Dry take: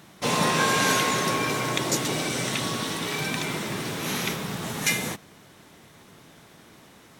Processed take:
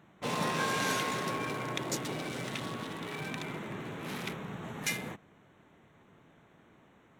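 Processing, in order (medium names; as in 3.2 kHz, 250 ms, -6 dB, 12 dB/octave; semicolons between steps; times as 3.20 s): local Wiener filter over 9 samples; trim -8.5 dB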